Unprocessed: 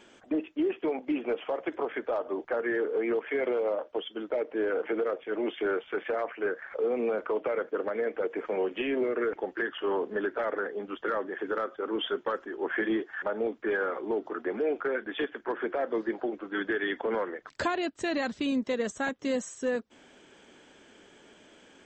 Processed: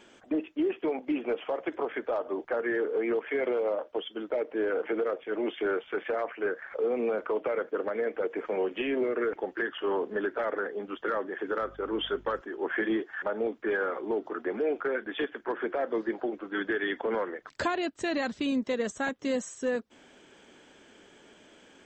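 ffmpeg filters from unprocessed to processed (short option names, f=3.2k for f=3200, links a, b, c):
-filter_complex "[0:a]asettb=1/sr,asplit=3[a][b][c];[a]atrim=end=11.614[d];[b]atrim=start=11.61:end=12.41,asetpts=PTS-STARTPTS,afade=t=in:d=0.004:c=qsin,afade=t=out:st=0.796:d=0.004:c=qsin,aeval=exprs='val(0)+0.00251*(sin(2*PI*50*n/s)+sin(2*PI*2*50*n/s)/2+sin(2*PI*3*50*n/s)/3+sin(2*PI*4*50*n/s)/4+sin(2*PI*5*50*n/s)/5)':c=same[e];[c]atrim=start=12.406[f];[d][e]acrossfade=d=0.004:c1=hsin:c2=qsin[g];[g][f]acrossfade=d=0.004:c1=qsin:c2=hsin"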